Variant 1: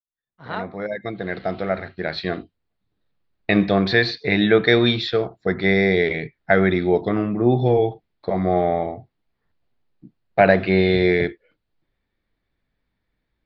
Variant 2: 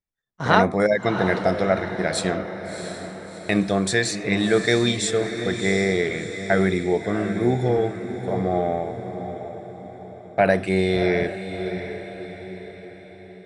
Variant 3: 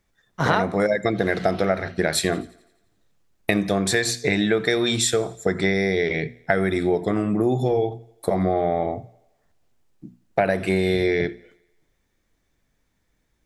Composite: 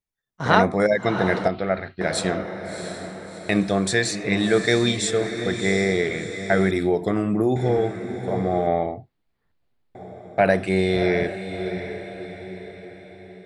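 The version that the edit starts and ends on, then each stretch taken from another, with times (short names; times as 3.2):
2
1.48–2.01 from 1
6.71–7.56 from 3
8.67–9.95 from 1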